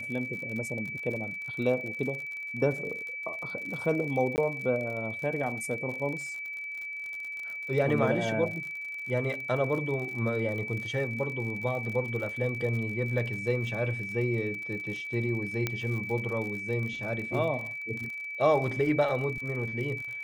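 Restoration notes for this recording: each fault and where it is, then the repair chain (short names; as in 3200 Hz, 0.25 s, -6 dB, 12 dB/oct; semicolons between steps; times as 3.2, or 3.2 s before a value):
crackle 56/s -36 dBFS
tone 2300 Hz -35 dBFS
4.36–4.38 gap 19 ms
15.67 pop -14 dBFS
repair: de-click; notch 2300 Hz, Q 30; interpolate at 4.36, 19 ms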